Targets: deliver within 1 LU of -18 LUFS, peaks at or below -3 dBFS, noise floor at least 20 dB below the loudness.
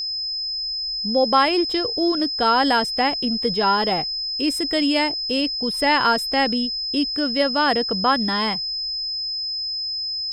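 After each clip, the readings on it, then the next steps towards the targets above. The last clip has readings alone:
steady tone 5.1 kHz; tone level -24 dBFS; loudness -20.5 LUFS; peak level -4.5 dBFS; loudness target -18.0 LUFS
-> band-stop 5.1 kHz, Q 30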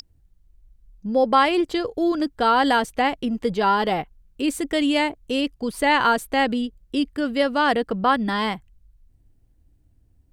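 steady tone not found; loudness -22.0 LUFS; peak level -5.0 dBFS; loudness target -18.0 LUFS
-> trim +4 dB; peak limiter -3 dBFS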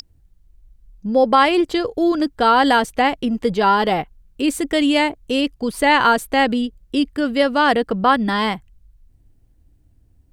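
loudness -18.0 LUFS; peak level -3.0 dBFS; noise floor -56 dBFS

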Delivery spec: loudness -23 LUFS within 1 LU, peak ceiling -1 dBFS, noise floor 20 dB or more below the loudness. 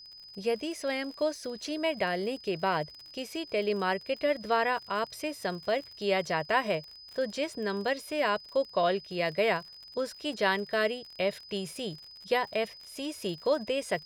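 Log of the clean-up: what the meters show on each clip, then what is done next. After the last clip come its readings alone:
tick rate 46 per s; steady tone 5 kHz; tone level -47 dBFS; loudness -31.0 LUFS; peak level -12.5 dBFS; loudness target -23.0 LUFS
-> de-click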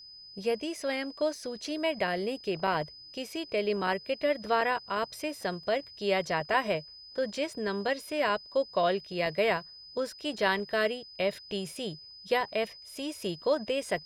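tick rate 0.36 per s; steady tone 5 kHz; tone level -47 dBFS
-> band-stop 5 kHz, Q 30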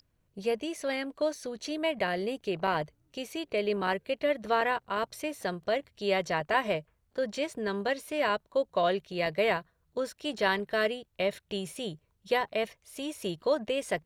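steady tone not found; loudness -31.5 LUFS; peak level -12.0 dBFS; loudness target -23.0 LUFS
-> trim +8.5 dB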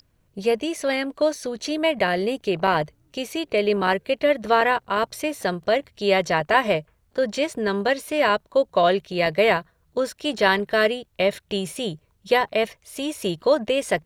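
loudness -23.0 LUFS; peak level -3.5 dBFS; noise floor -65 dBFS

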